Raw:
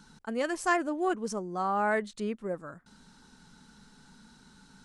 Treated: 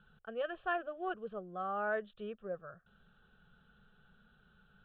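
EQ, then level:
Butterworth low-pass 3,500 Hz 72 dB per octave
high-frequency loss of the air 65 metres
phaser with its sweep stopped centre 1,400 Hz, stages 8
−4.5 dB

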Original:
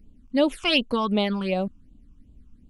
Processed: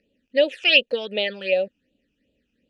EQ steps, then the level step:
formant filter e
parametric band 5,000 Hz +14 dB 2.7 octaves
+9.0 dB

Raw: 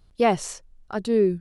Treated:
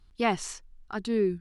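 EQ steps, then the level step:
parametric band 130 Hz −8 dB 1.3 octaves
parametric band 560 Hz −13.5 dB 0.71 octaves
high-shelf EQ 8,400 Hz −9 dB
0.0 dB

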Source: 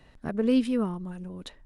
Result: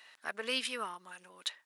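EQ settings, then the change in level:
high-pass filter 1,500 Hz 12 dB per octave
+7.5 dB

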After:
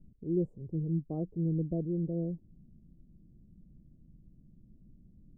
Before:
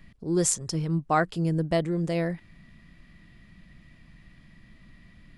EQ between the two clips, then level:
inverse Chebyshev low-pass filter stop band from 1,500 Hz, stop band 60 dB
−4.5 dB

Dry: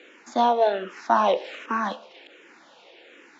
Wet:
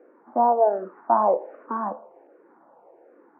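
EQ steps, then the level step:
inverse Chebyshev low-pass filter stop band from 3,400 Hz, stop band 60 dB
low-shelf EQ 360 Hz −8 dB
+3.5 dB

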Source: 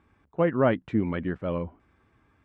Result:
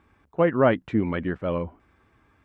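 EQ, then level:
parametric band 150 Hz −3 dB 2.3 octaves
+4.0 dB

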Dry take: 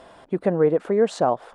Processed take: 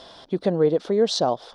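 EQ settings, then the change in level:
flat-topped bell 4,400 Hz +15 dB 1.1 octaves
dynamic equaliser 1,500 Hz, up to −5 dB, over −36 dBFS, Q 0.78
0.0 dB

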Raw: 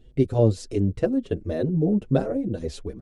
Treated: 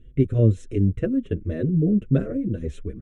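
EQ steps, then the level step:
low-pass filter 7,200 Hz 12 dB per octave
low-shelf EQ 250 Hz +5 dB
phaser with its sweep stopped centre 2,000 Hz, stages 4
0.0 dB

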